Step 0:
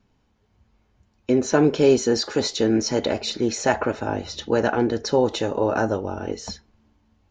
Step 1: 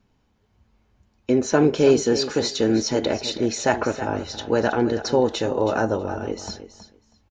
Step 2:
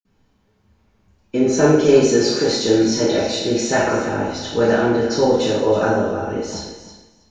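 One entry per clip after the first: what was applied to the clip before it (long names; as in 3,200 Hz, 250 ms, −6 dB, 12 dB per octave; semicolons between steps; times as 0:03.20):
repeating echo 322 ms, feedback 16%, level −12.5 dB
convolution reverb RT60 0.80 s, pre-delay 47 ms; level +1 dB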